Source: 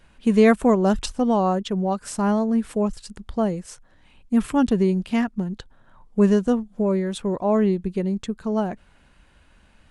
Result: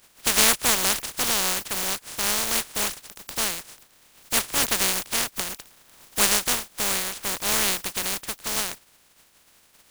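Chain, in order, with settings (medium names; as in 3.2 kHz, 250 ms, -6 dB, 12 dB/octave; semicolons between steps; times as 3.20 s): spectral contrast reduction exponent 0.11; trim -3.5 dB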